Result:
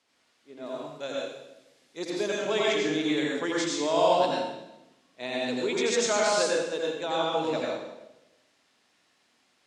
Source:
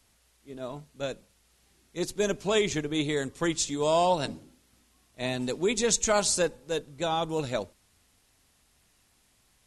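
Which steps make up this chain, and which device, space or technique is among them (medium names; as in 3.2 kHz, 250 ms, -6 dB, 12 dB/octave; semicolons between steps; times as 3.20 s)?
supermarket ceiling speaker (band-pass 290–5100 Hz; reverberation RT60 0.95 s, pre-delay 79 ms, DRR -4 dB); 0.66–2.05 s: treble shelf 7.2 kHz +9.5 dB; trim -3 dB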